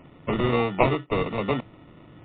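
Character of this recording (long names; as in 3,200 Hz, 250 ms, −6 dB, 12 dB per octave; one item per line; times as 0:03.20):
aliases and images of a low sample rate 1,600 Hz, jitter 0%
MP3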